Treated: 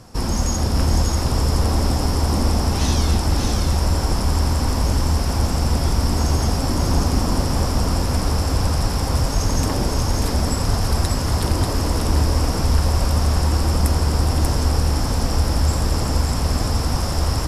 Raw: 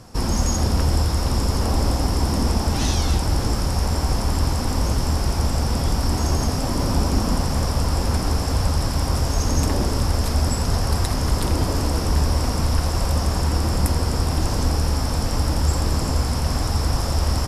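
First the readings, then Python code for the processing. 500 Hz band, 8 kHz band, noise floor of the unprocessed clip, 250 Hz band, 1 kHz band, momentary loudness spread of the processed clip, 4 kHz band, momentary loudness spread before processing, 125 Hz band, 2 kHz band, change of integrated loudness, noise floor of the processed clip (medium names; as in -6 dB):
+1.5 dB, +1.5 dB, -24 dBFS, +1.5 dB, +1.5 dB, 2 LU, +1.5 dB, 2 LU, +2.0 dB, +1.5 dB, +1.5 dB, -22 dBFS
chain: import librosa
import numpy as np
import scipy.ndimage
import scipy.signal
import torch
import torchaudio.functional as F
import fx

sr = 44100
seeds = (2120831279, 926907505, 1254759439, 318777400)

y = x + 10.0 ** (-4.0 / 20.0) * np.pad(x, (int(588 * sr / 1000.0), 0))[:len(x)]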